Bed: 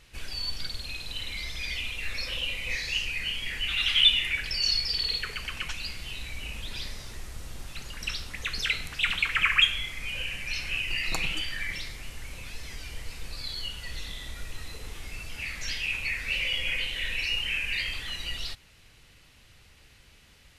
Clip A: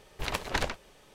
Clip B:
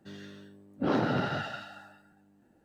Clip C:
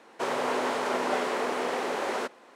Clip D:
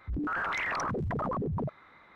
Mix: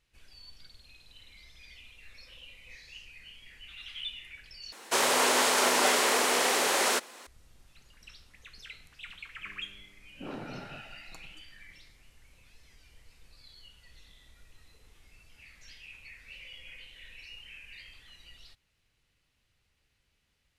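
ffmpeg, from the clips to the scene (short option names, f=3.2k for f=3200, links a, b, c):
-filter_complex "[0:a]volume=-19dB[a];[3:a]crystalizer=i=8:c=0[b];[a]asplit=2[c][d];[c]atrim=end=4.724[e];[b]atrim=end=2.55,asetpts=PTS-STARTPTS,volume=-1.5dB[f];[d]atrim=start=7.266[g];[2:a]atrim=end=2.64,asetpts=PTS-STARTPTS,volume=-13.5dB,afade=t=in:d=0.004:c=hsin,afade=t=out:st=2.636:d=0.004:c=hsin,adelay=9390[h];[e][f]acrossfade=d=0.004:c1=hsin:c2=hsin[i];[i][g]acrossfade=d=0.004:c1=hsin:c2=hsin[j];[j][h]amix=inputs=2:normalize=0"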